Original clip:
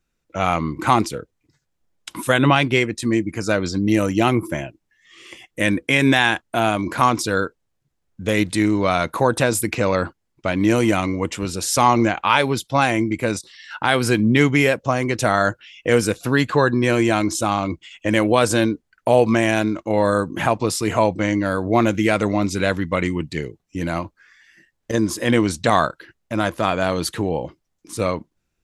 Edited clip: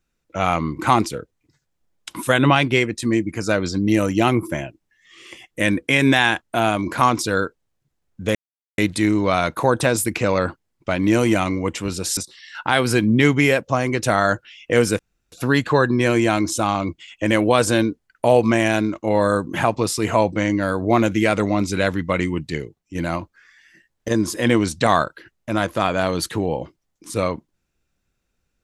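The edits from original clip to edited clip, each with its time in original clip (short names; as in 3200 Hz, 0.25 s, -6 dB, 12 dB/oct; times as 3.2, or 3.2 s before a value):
8.35 insert silence 0.43 s
11.74–13.33 cut
16.15 insert room tone 0.33 s
23.39–23.78 fade out, to -7.5 dB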